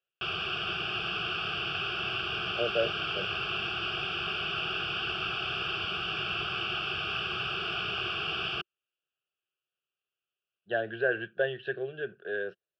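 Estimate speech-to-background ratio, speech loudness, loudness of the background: -2.0 dB, -33.0 LUFS, -31.0 LUFS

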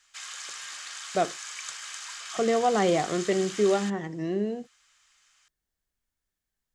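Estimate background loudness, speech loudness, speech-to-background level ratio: -37.0 LUFS, -27.0 LUFS, 10.0 dB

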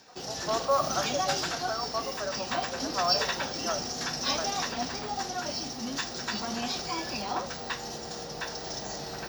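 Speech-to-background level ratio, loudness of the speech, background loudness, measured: -2.0 dB, -34.0 LUFS, -32.0 LUFS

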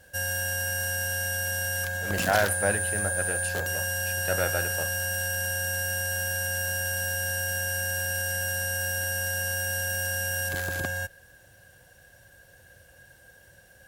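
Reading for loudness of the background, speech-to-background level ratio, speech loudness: -27.5 LUFS, -2.5 dB, -30.0 LUFS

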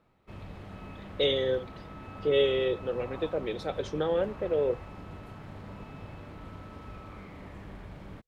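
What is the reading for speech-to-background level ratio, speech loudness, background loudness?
15.0 dB, -29.5 LUFS, -44.5 LUFS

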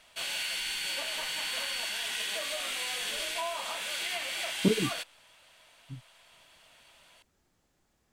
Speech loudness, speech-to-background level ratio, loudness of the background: -31.0 LUFS, 1.5 dB, -32.5 LUFS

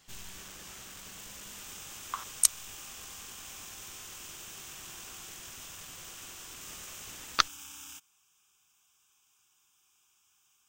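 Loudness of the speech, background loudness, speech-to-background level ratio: -29.5 LUFS, -44.5 LUFS, 15.0 dB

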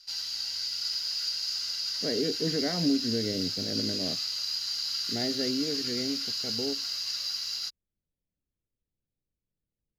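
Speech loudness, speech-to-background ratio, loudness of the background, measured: -33.0 LUFS, -3.0 dB, -30.0 LUFS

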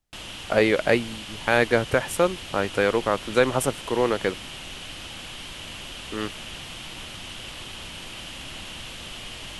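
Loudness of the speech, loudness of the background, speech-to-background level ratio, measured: -23.5 LUFS, -36.0 LUFS, 12.5 dB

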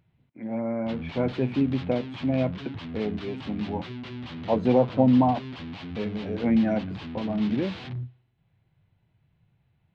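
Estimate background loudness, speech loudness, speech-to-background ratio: -37.5 LUFS, -26.5 LUFS, 11.0 dB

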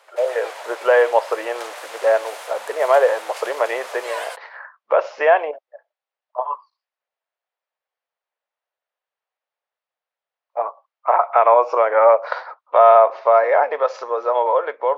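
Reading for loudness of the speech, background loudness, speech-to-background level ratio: -18.0 LUFS, -34.0 LUFS, 16.0 dB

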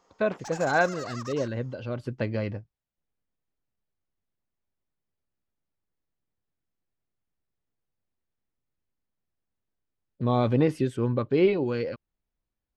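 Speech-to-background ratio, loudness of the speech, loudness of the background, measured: 14.0 dB, -27.5 LUFS, -41.5 LUFS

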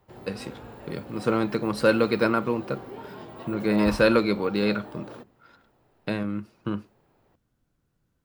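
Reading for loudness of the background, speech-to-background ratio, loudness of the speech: -41.5 LUFS, 16.0 dB, -25.5 LUFS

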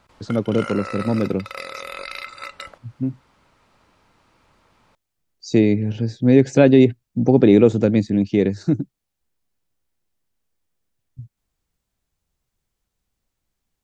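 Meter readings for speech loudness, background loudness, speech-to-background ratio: -18.0 LUFS, -33.5 LUFS, 15.5 dB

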